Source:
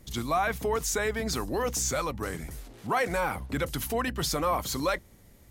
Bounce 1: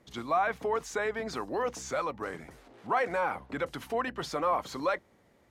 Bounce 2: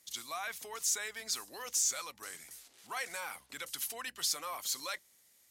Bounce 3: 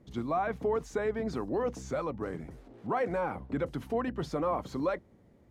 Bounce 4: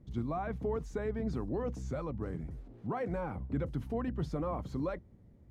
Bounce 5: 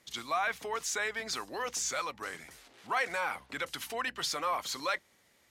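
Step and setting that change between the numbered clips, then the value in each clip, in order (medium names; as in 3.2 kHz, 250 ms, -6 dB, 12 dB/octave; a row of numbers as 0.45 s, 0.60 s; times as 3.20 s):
band-pass filter, frequency: 850 Hz, 7.8 kHz, 330 Hz, 130 Hz, 2.6 kHz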